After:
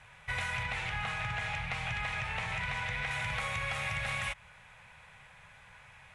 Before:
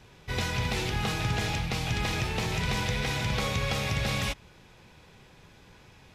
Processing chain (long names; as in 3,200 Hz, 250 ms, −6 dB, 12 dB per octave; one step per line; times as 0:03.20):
drawn EQ curve 140 Hz 0 dB, 340 Hz −18 dB, 580 Hz +3 dB, 1,100 Hz +8 dB, 2,100 Hz +12 dB, 5,000 Hz −5 dB, 10,000 Hz +9 dB, 14,000 Hz −19 dB
downward compressor, threshold −26 dBFS, peak gain reduction 6.5 dB
0:00.63–0:03.11: high-frequency loss of the air 56 metres
level −5.5 dB